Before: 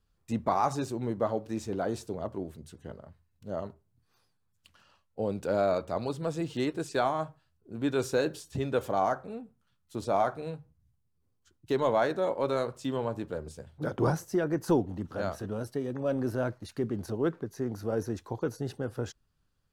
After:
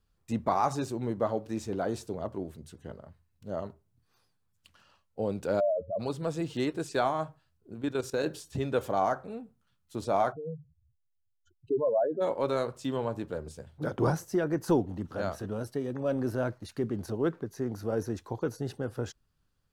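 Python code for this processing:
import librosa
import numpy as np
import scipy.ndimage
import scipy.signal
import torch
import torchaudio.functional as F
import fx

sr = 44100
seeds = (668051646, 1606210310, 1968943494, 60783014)

y = fx.spec_expand(x, sr, power=3.6, at=(5.59, 5.99), fade=0.02)
y = fx.level_steps(y, sr, step_db=14, at=(7.74, 8.26))
y = fx.spec_expand(y, sr, power=2.8, at=(10.31, 12.2), fade=0.02)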